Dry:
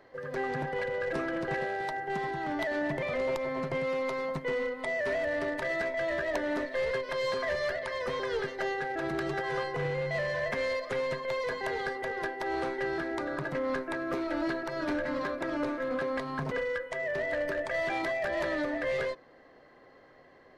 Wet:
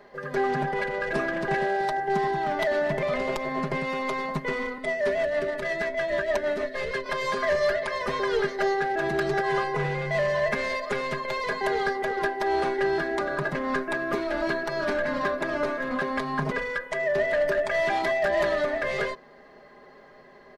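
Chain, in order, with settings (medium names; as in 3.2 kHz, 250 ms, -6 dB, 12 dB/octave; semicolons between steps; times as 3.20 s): comb 4.9 ms, depth 76%; 4.78–7.06 s: rotary cabinet horn 6.3 Hz; trim +4.5 dB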